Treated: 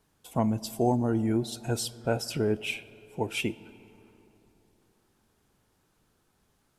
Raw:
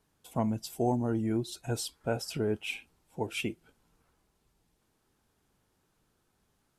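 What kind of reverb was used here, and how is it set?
digital reverb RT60 3.5 s, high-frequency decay 0.45×, pre-delay 10 ms, DRR 18 dB; gain +3.5 dB

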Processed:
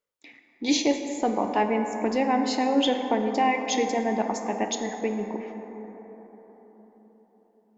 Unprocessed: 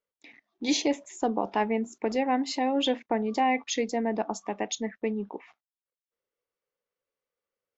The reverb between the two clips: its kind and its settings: plate-style reverb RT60 4.7 s, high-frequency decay 0.3×, DRR 4.5 dB; gain +2 dB

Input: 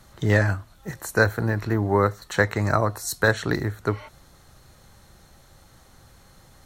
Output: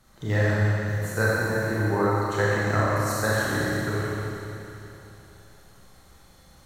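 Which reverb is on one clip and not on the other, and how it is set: Schroeder reverb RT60 3.2 s, combs from 29 ms, DRR -7.5 dB; gain -9 dB

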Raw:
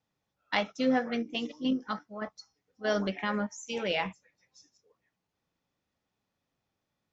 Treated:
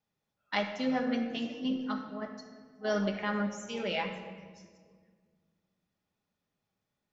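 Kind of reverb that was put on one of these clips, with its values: shoebox room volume 2200 m³, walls mixed, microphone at 1.3 m; gain -4 dB

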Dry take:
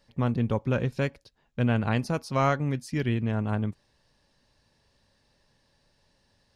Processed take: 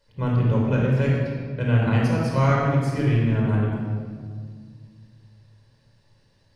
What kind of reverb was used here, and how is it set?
shoebox room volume 3000 m³, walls mixed, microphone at 4.9 m; gain -4 dB

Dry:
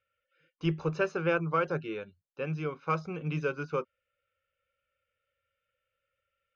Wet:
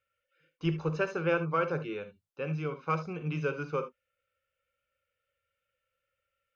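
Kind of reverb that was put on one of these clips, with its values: non-linear reverb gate 90 ms rising, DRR 10 dB; gain -1 dB

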